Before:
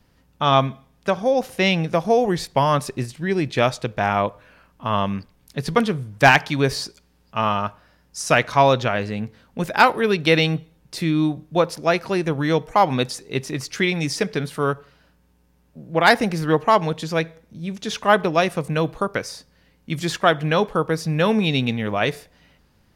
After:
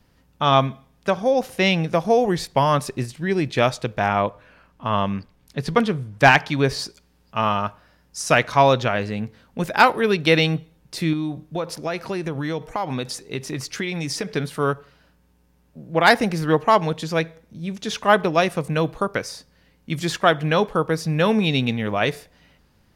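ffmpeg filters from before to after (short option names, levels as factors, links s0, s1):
-filter_complex "[0:a]asettb=1/sr,asplit=3[s0][s1][s2];[s0]atrim=end=4.084[s3];[s1]atrim=start=4.08:end=6.79,asetpts=PTS-STARTPTS,afade=t=in:d=0.004:c=qsin,afade=t=out:st=2.706:d=0.004:c=qsin,highshelf=f=7600:g=-7.5[s4];[s2]atrim=start=6.786[s5];[s3][s4]acrossfade=d=0.004:c1=hsin:c2=qsin[s6];[s6][s5]acrossfade=d=0.004:c1=qsin:c2=hsin,asettb=1/sr,asplit=3[s7][s8][s9];[s7]atrim=end=11.134[s10];[s8]atrim=start=11.13:end=14.29,asetpts=PTS-STARTPTS,afade=t=in:d=0.004:c=qsin,afade=t=out:st=3.156:d=0.004:c=qsin,acompressor=threshold=0.0794:ratio=4:attack=3.2:release=140:knee=1:detection=peak[s11];[s9]atrim=start=14.286[s12];[s10][s11]acrossfade=d=0.004:c1=hsin:c2=qsin[s13];[s13][s12]acrossfade=d=0.004:c1=qsin:c2=hsin"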